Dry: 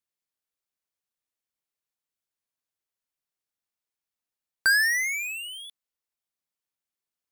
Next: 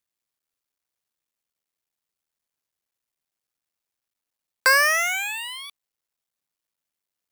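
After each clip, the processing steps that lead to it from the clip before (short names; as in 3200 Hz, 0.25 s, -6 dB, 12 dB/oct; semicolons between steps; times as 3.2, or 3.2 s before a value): cycle switcher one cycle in 3, muted; gain +5.5 dB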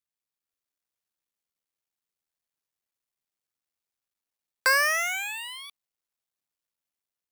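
AGC gain up to 3.5 dB; gain -8 dB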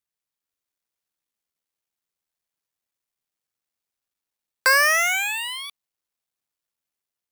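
sample leveller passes 1; gain +4 dB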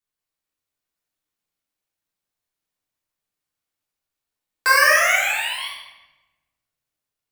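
shoebox room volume 640 m³, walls mixed, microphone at 3.4 m; gain -5 dB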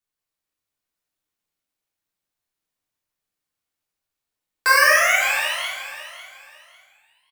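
feedback echo 0.55 s, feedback 27%, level -14 dB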